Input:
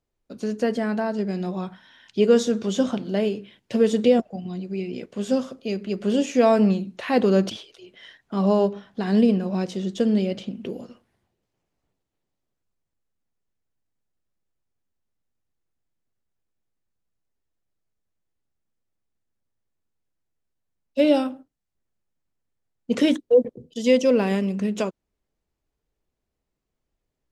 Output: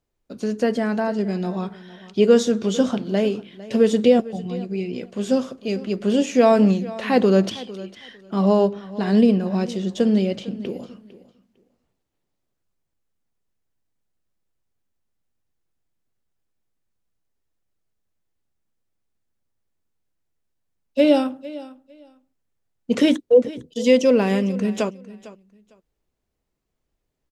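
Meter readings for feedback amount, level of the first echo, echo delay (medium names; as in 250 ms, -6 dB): 19%, -18.0 dB, 453 ms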